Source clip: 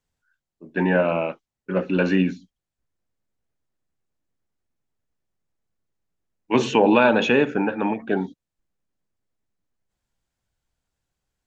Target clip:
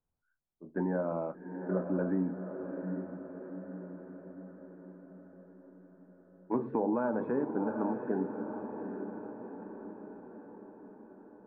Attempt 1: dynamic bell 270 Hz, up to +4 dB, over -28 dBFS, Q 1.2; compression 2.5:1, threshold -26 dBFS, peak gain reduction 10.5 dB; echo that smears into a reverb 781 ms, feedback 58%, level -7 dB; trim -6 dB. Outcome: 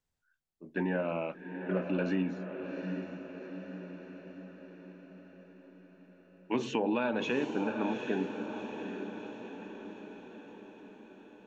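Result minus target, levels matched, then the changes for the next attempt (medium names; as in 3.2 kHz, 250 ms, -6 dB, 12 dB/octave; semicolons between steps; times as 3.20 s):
2 kHz band +8.0 dB
add after dynamic bell: inverse Chebyshev low-pass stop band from 2.7 kHz, stop band 40 dB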